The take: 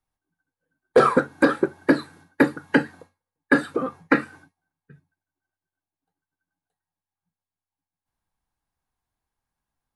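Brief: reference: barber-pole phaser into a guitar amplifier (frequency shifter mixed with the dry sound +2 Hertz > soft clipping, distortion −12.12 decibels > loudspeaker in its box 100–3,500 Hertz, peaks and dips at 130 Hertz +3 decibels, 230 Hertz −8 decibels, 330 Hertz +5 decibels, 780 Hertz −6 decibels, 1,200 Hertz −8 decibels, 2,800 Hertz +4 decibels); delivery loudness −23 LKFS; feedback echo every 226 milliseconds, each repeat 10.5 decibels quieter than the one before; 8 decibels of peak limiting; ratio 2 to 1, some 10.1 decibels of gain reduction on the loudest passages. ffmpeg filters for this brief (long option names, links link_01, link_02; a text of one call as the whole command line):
ffmpeg -i in.wav -filter_complex "[0:a]acompressor=threshold=-31dB:ratio=2,alimiter=limit=-19.5dB:level=0:latency=1,aecho=1:1:226|452|678:0.299|0.0896|0.0269,asplit=2[link_01][link_02];[link_02]afreqshift=2[link_03];[link_01][link_03]amix=inputs=2:normalize=1,asoftclip=threshold=-28.5dB,highpass=100,equalizer=frequency=130:width_type=q:width=4:gain=3,equalizer=frequency=230:width_type=q:width=4:gain=-8,equalizer=frequency=330:width_type=q:width=4:gain=5,equalizer=frequency=780:width_type=q:width=4:gain=-6,equalizer=frequency=1200:width_type=q:width=4:gain=-8,equalizer=frequency=2800:width_type=q:width=4:gain=4,lowpass=frequency=3500:width=0.5412,lowpass=frequency=3500:width=1.3066,volume=17.5dB" out.wav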